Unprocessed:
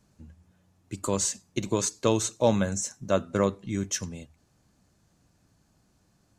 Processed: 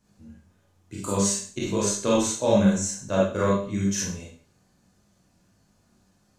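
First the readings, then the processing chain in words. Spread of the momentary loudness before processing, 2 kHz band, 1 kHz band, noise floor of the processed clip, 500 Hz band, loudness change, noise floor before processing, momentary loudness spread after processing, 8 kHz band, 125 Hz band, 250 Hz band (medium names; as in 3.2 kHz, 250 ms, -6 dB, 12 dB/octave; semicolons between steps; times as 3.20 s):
10 LU, +3.0 dB, +2.5 dB, -65 dBFS, +3.0 dB, +3.5 dB, -67 dBFS, 10 LU, +2.5 dB, +3.5 dB, +5.5 dB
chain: chorus 1.6 Hz, delay 19.5 ms, depth 2.4 ms; Schroeder reverb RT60 0.44 s, combs from 31 ms, DRR -4.5 dB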